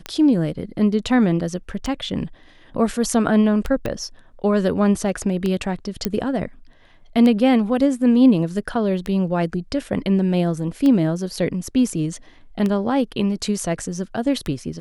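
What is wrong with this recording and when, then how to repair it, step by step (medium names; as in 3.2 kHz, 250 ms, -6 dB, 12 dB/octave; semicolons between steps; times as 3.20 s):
tick 33 1/3 rpm -11 dBFS
3.86 s: pop -12 dBFS
6.05 s: pop -6 dBFS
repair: de-click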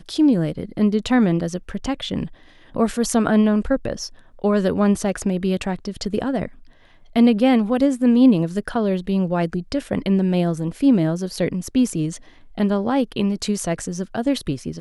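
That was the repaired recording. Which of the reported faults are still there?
3.86 s: pop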